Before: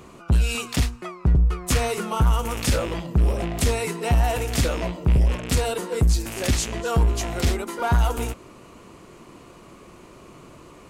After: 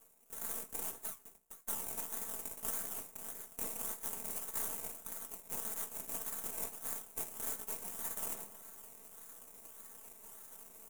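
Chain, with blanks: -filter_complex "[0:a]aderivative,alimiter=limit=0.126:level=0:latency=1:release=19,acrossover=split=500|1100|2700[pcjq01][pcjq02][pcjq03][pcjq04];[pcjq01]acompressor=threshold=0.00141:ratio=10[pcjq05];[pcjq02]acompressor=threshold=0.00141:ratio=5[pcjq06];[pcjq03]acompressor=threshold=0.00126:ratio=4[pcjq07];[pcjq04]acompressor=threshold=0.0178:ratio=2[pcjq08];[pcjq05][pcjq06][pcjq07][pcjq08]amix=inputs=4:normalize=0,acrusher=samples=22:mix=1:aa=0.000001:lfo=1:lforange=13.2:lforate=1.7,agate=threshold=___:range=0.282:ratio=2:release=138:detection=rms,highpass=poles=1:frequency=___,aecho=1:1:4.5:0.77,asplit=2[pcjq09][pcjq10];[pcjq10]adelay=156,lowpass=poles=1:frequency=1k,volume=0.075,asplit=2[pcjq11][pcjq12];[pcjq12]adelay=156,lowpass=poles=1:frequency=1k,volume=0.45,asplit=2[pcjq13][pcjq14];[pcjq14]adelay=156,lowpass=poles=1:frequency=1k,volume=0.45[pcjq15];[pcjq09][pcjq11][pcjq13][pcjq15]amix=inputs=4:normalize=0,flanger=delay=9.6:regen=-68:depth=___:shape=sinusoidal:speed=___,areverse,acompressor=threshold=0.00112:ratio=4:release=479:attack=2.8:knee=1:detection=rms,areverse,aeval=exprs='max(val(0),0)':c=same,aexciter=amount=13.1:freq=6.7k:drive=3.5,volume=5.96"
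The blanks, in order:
0.00316, 250, 7.2, 0.58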